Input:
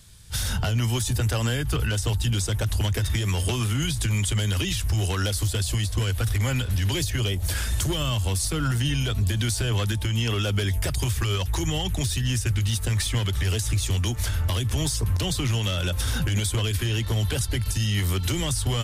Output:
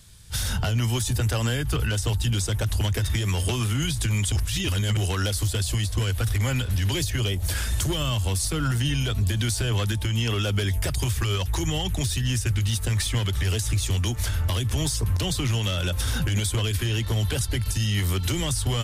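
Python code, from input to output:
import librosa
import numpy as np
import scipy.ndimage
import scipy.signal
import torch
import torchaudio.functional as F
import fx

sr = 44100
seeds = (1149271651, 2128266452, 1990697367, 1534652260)

y = fx.edit(x, sr, fx.reverse_span(start_s=4.32, length_s=0.65), tone=tone)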